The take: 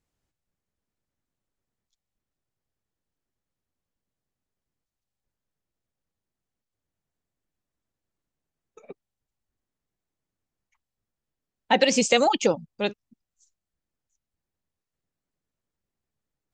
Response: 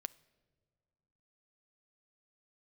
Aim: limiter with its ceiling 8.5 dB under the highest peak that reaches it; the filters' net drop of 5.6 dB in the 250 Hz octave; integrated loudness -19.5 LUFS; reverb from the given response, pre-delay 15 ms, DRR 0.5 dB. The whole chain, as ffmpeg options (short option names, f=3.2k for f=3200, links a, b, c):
-filter_complex "[0:a]equalizer=f=250:t=o:g=-6.5,alimiter=limit=-15dB:level=0:latency=1,asplit=2[a][b];[1:a]atrim=start_sample=2205,adelay=15[c];[b][c]afir=irnorm=-1:irlink=0,volume=2.5dB[d];[a][d]amix=inputs=2:normalize=0,volume=4.5dB"